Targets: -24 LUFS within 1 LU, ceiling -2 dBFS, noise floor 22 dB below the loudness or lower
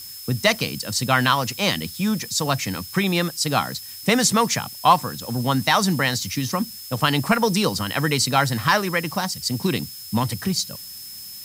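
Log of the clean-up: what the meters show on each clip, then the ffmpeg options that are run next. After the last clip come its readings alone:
steady tone 5.2 kHz; tone level -39 dBFS; noise floor -38 dBFS; noise floor target -44 dBFS; loudness -21.5 LUFS; peak level -3.0 dBFS; loudness target -24.0 LUFS
-> -af "bandreject=f=5200:w=30"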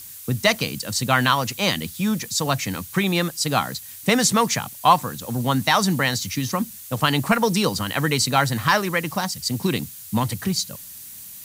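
steady tone not found; noise floor -40 dBFS; noise floor target -44 dBFS
-> -af "afftdn=nr=6:nf=-40"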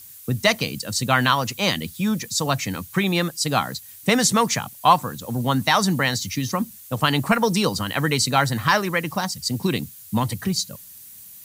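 noise floor -43 dBFS; noise floor target -44 dBFS
-> -af "afftdn=nr=6:nf=-43"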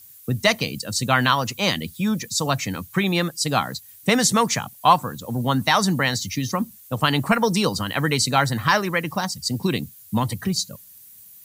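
noise floor -47 dBFS; loudness -22.0 LUFS; peak level -3.5 dBFS; loudness target -24.0 LUFS
-> -af "volume=0.794"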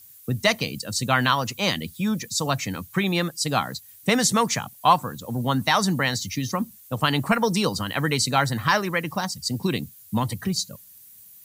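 loudness -24.0 LUFS; peak level -5.5 dBFS; noise floor -49 dBFS

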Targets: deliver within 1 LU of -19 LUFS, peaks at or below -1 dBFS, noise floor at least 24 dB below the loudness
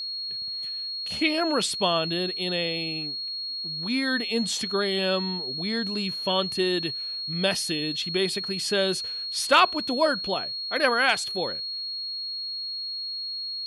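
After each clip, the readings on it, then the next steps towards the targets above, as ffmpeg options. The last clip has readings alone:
steady tone 4.3 kHz; tone level -30 dBFS; loudness -25.5 LUFS; peak level -7.5 dBFS; loudness target -19.0 LUFS
-> -af "bandreject=f=4300:w=30"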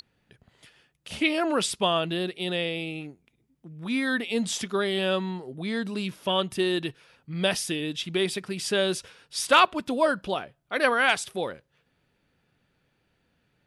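steady tone not found; loudness -26.5 LUFS; peak level -7.5 dBFS; loudness target -19.0 LUFS
-> -af "volume=2.37,alimiter=limit=0.891:level=0:latency=1"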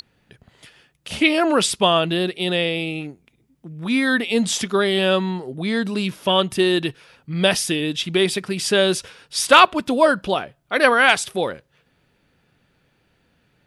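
loudness -19.0 LUFS; peak level -1.0 dBFS; noise floor -65 dBFS

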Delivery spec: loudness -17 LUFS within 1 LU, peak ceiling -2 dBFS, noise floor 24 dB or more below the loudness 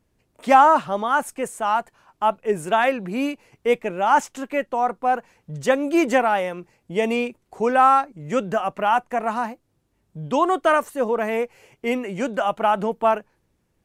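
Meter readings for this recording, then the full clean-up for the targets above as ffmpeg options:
loudness -21.5 LUFS; peak level -3.0 dBFS; loudness target -17.0 LUFS
-> -af "volume=1.68,alimiter=limit=0.794:level=0:latency=1"

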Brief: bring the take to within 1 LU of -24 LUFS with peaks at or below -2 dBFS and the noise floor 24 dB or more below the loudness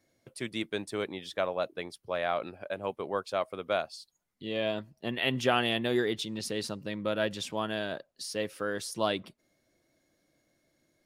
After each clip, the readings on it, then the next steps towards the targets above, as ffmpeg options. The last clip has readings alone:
loudness -32.5 LUFS; peak level -11.5 dBFS; loudness target -24.0 LUFS
-> -af "volume=2.66"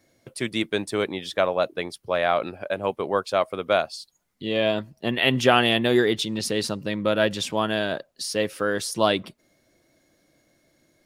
loudness -24.0 LUFS; peak level -3.0 dBFS; noise floor -67 dBFS

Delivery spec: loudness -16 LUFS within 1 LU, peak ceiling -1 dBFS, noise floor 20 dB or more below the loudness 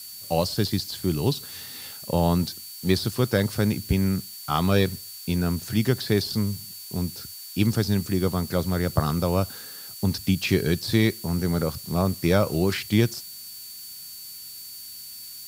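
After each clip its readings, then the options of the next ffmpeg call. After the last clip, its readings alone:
steady tone 4.5 kHz; tone level -43 dBFS; noise floor -40 dBFS; noise floor target -45 dBFS; loudness -25.0 LUFS; peak level -5.0 dBFS; loudness target -16.0 LUFS
-> -af "bandreject=f=4500:w=30"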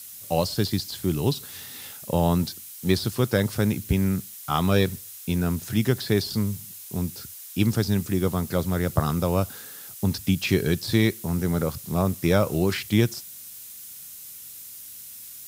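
steady tone not found; noise floor -42 dBFS; noise floor target -45 dBFS
-> -af "afftdn=nr=6:nf=-42"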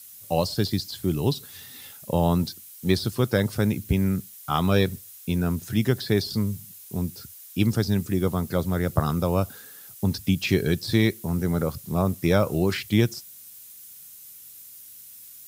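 noise floor -46 dBFS; loudness -25.0 LUFS; peak level -5.0 dBFS; loudness target -16.0 LUFS
-> -af "volume=2.82,alimiter=limit=0.891:level=0:latency=1"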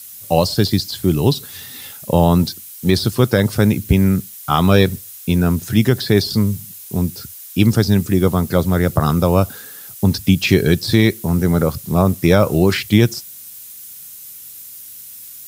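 loudness -16.5 LUFS; peak level -1.0 dBFS; noise floor -37 dBFS

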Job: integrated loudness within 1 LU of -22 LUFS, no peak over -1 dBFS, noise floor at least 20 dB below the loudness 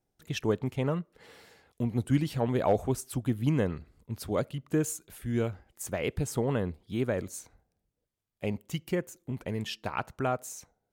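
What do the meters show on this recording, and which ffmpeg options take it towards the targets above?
loudness -32.0 LUFS; peak level -15.0 dBFS; loudness target -22.0 LUFS
-> -af "volume=3.16"

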